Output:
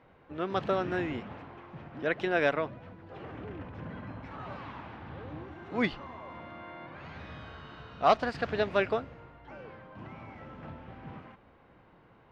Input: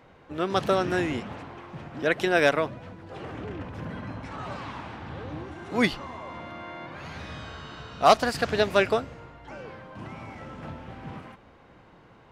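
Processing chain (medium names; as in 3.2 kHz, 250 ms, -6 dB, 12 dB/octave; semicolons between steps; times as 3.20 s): low-pass 3.2 kHz 12 dB/octave; trim -5.5 dB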